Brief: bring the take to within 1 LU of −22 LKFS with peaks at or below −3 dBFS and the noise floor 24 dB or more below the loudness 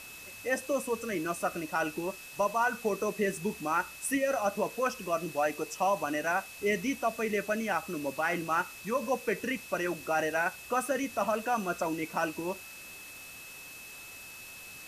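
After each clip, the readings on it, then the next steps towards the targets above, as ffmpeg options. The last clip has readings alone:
interfering tone 2,600 Hz; level of the tone −47 dBFS; background noise floor −47 dBFS; target noise floor −56 dBFS; integrated loudness −31.5 LKFS; sample peak −16.5 dBFS; target loudness −22.0 LKFS
→ -af "bandreject=frequency=2600:width=30"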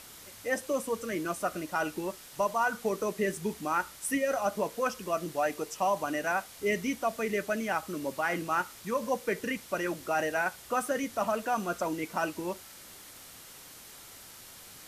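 interfering tone none found; background noise floor −50 dBFS; target noise floor −56 dBFS
→ -af "afftdn=noise_reduction=6:noise_floor=-50"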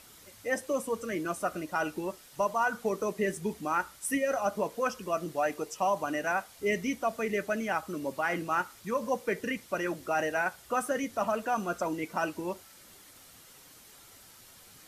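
background noise floor −55 dBFS; target noise floor −56 dBFS
→ -af "afftdn=noise_reduction=6:noise_floor=-55"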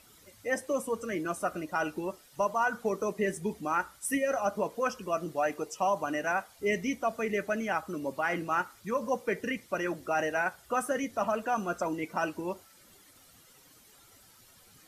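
background noise floor −59 dBFS; integrated loudness −32.0 LKFS; sample peak −16.5 dBFS; target loudness −22.0 LKFS
→ -af "volume=10dB"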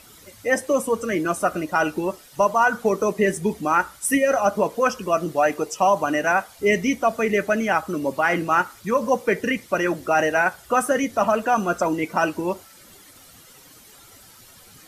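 integrated loudness −22.0 LKFS; sample peak −6.5 dBFS; background noise floor −49 dBFS

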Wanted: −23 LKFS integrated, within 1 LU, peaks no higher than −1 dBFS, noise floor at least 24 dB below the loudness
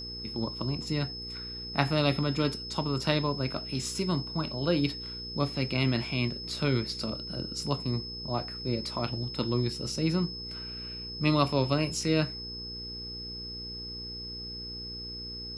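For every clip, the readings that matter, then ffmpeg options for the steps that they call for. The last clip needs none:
mains hum 60 Hz; hum harmonics up to 480 Hz; level of the hum −42 dBFS; interfering tone 5,200 Hz; level of the tone −38 dBFS; integrated loudness −31.0 LKFS; sample peak −10.5 dBFS; target loudness −23.0 LKFS
→ -af "bandreject=frequency=60:width_type=h:width=4,bandreject=frequency=120:width_type=h:width=4,bandreject=frequency=180:width_type=h:width=4,bandreject=frequency=240:width_type=h:width=4,bandreject=frequency=300:width_type=h:width=4,bandreject=frequency=360:width_type=h:width=4,bandreject=frequency=420:width_type=h:width=4,bandreject=frequency=480:width_type=h:width=4"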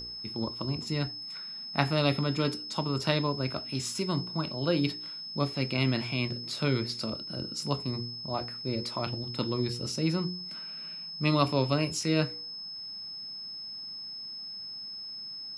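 mains hum none found; interfering tone 5,200 Hz; level of the tone −38 dBFS
→ -af "bandreject=frequency=5200:width=30"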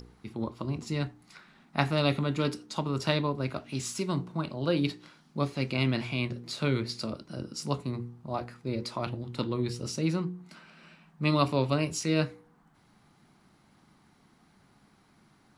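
interfering tone none found; integrated loudness −31.5 LKFS; sample peak −10.0 dBFS; target loudness −23.0 LKFS
→ -af "volume=8.5dB"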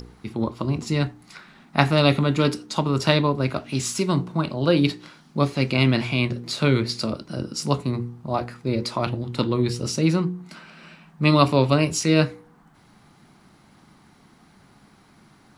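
integrated loudness −23.0 LKFS; sample peak −1.5 dBFS; background noise floor −55 dBFS

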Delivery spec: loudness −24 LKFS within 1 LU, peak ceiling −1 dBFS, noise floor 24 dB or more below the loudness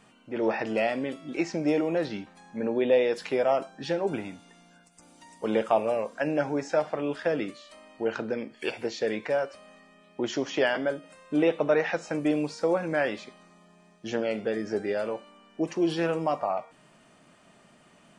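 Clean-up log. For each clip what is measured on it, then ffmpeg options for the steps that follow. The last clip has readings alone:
integrated loudness −28.5 LKFS; sample peak −10.5 dBFS; target loudness −24.0 LKFS
→ -af "volume=4.5dB"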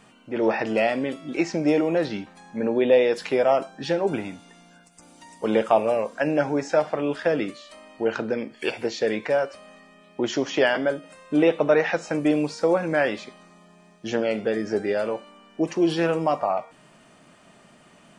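integrated loudness −24.0 LKFS; sample peak −6.0 dBFS; background noise floor −54 dBFS

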